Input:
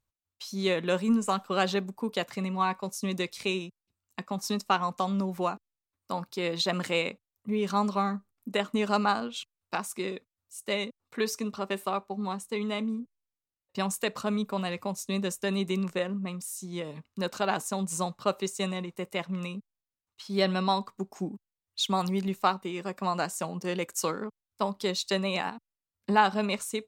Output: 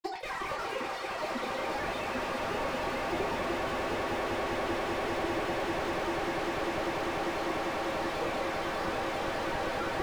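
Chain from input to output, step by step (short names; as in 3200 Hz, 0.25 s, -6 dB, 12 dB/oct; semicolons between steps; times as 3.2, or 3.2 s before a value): weighting filter A; transient shaper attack -12 dB, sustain +12 dB; grains 0.1 s, grains 20/s, spray 0.941 s, pitch spread up and down by 12 st; wide varispeed 2.68×; air absorption 150 m; swelling echo 0.198 s, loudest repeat 8, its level -5.5 dB; reverb RT60 0.30 s, pre-delay 6 ms, DRR -1 dB; slew limiter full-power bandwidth 30 Hz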